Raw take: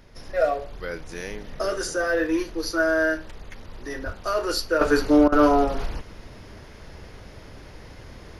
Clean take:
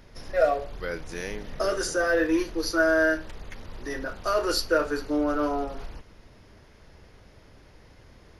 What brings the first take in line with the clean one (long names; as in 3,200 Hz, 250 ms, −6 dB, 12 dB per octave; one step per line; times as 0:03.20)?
high-pass at the plosives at 0:04.05
repair the gap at 0:05.28, 41 ms
level correction −9.5 dB, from 0:04.81